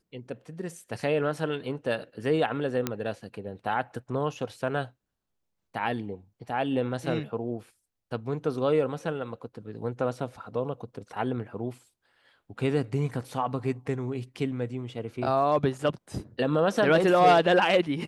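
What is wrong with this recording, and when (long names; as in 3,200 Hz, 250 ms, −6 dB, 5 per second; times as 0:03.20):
0:02.87: click −12 dBFS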